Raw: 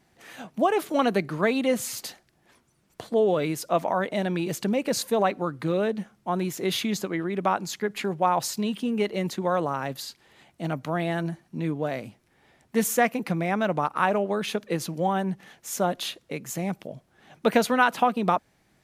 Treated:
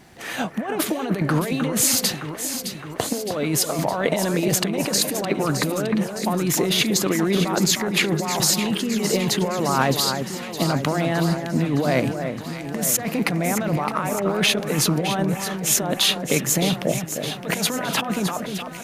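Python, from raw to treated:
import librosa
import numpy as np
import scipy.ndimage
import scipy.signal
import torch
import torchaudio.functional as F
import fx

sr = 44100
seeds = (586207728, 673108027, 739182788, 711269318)

y = fx.over_compress(x, sr, threshold_db=-32.0, ratio=-1.0)
y = fx.echo_alternate(y, sr, ms=307, hz=2000.0, feedback_pct=79, wet_db=-7.0)
y = y * 10.0 ** (9.0 / 20.0)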